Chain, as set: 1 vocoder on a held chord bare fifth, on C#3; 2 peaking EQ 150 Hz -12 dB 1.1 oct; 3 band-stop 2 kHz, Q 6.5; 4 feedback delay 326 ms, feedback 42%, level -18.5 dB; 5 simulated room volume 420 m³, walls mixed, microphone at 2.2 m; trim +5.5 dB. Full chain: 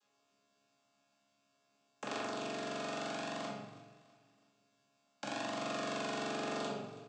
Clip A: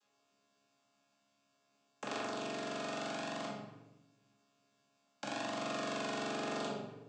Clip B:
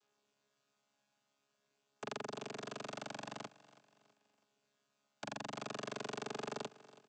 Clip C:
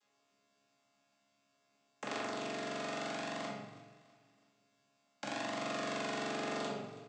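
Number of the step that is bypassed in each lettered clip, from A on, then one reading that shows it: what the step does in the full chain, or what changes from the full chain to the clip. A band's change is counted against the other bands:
4, momentary loudness spread change -2 LU; 5, echo-to-direct 5.0 dB to -17.5 dB; 3, 2 kHz band +1.5 dB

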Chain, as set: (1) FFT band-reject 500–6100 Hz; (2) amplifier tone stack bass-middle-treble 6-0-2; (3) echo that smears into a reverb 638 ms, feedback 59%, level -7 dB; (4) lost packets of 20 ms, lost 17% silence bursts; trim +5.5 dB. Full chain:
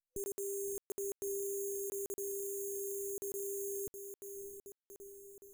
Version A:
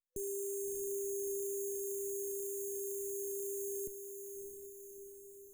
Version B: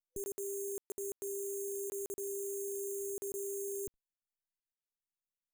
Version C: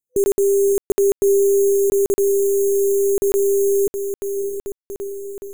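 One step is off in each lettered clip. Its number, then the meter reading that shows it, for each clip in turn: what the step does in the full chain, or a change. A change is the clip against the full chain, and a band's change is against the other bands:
4, momentary loudness spread change -2 LU; 3, momentary loudness spread change -11 LU; 2, crest factor change -4.5 dB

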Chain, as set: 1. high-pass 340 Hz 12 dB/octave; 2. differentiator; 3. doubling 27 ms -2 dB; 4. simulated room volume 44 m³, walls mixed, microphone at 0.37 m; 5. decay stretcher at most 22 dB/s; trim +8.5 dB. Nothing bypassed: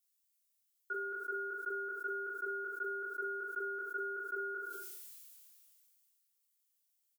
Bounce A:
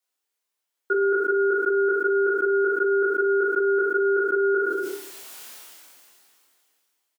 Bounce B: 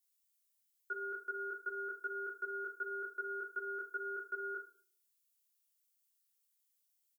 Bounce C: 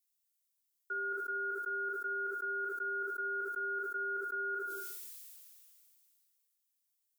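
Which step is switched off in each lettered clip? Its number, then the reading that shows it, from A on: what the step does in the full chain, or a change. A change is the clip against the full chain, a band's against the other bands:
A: 2, momentary loudness spread change +5 LU; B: 5, crest factor change +2.0 dB; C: 3, 500 Hz band -3.0 dB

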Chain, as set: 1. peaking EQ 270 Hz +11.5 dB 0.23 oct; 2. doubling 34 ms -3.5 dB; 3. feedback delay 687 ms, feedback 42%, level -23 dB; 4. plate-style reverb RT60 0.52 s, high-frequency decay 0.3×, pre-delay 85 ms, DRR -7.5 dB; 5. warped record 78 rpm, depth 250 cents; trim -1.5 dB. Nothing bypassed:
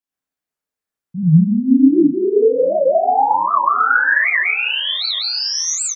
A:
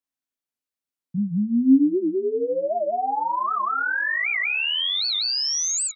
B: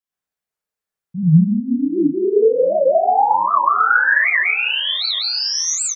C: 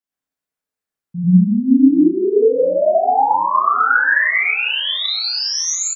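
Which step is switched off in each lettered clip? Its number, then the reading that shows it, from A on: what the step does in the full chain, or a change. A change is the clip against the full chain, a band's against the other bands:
4, momentary loudness spread change +2 LU; 1, 250 Hz band -4.0 dB; 5, 125 Hz band -2.0 dB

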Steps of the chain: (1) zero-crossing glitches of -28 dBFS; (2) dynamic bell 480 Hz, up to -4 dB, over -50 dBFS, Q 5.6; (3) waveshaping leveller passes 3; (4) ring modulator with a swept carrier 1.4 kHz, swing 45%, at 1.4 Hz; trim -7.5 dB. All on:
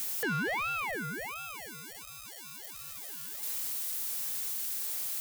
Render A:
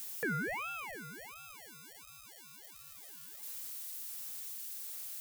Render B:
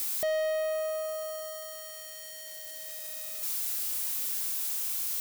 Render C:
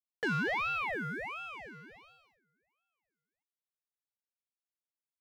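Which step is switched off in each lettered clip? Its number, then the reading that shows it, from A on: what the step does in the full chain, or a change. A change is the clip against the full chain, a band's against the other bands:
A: 3, crest factor change +7.0 dB; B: 4, crest factor change -3.0 dB; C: 1, distortion -2 dB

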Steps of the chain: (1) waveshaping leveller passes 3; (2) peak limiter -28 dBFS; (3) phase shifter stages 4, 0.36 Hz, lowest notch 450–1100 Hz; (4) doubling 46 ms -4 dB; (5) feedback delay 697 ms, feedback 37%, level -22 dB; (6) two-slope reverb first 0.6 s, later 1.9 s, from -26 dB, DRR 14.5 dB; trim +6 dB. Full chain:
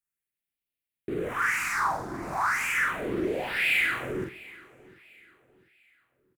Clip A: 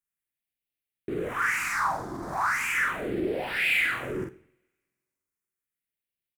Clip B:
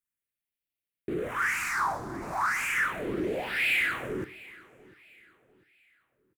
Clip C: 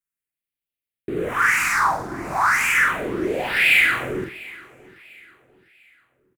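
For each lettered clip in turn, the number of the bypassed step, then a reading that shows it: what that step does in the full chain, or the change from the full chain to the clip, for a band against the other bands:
5, momentary loudness spread change -2 LU; 4, loudness change -1.5 LU; 2, mean gain reduction 7.0 dB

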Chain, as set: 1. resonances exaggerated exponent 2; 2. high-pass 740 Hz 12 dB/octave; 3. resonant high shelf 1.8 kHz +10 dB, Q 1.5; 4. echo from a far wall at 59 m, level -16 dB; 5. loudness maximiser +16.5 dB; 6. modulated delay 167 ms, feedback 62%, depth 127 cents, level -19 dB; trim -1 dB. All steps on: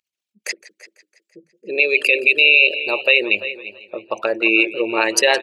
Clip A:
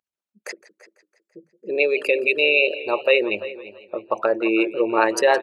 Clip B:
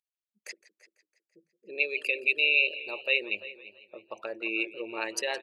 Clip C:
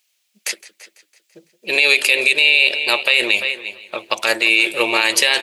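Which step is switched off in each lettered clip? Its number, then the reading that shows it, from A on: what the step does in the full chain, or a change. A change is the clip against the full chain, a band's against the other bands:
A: 3, loudness change -5.0 LU; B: 5, crest factor change +3.5 dB; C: 1, 4 kHz band +6.0 dB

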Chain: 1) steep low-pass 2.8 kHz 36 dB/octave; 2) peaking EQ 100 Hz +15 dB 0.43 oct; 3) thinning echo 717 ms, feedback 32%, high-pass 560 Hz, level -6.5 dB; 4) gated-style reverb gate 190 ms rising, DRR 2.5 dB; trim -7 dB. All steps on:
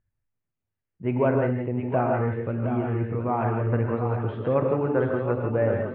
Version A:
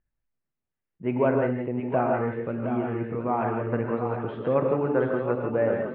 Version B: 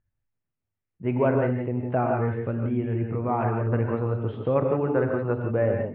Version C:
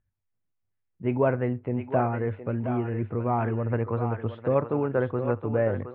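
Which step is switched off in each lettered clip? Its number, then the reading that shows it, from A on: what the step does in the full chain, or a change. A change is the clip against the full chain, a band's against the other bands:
2, 125 Hz band -6.5 dB; 3, echo-to-direct -0.5 dB to -2.5 dB; 4, echo-to-direct -0.5 dB to -7.0 dB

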